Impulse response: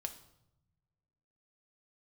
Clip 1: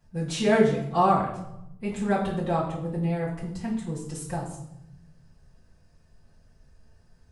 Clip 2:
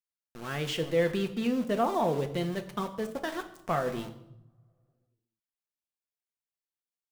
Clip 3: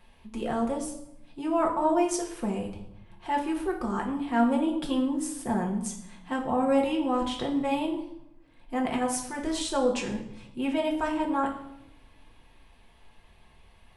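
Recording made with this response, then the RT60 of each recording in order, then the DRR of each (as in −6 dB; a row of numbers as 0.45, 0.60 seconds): 2; 0.80, 0.85, 0.80 seconds; −8.0, 5.5, −1.0 decibels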